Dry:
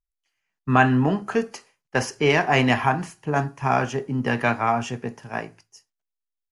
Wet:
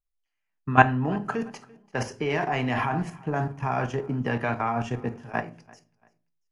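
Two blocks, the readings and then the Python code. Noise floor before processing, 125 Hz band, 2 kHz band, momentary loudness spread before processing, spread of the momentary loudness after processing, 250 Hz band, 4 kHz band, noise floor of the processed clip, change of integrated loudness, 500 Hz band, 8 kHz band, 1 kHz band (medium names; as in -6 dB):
-85 dBFS, -3.0 dB, -4.0 dB, 14 LU, 12 LU, -5.0 dB, -9.5 dB, -80 dBFS, -4.5 dB, -5.0 dB, -9.5 dB, -3.0 dB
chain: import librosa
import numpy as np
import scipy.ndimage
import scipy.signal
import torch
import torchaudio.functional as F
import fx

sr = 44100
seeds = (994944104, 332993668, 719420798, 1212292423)

y = fx.high_shelf(x, sr, hz=4100.0, db=-9.0)
y = fx.level_steps(y, sr, step_db=15)
y = fx.echo_feedback(y, sr, ms=340, feedback_pct=30, wet_db=-23.5)
y = fx.room_shoebox(y, sr, seeds[0], volume_m3=170.0, walls='furnished', distance_m=0.49)
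y = F.gain(torch.from_numpy(y), 3.5).numpy()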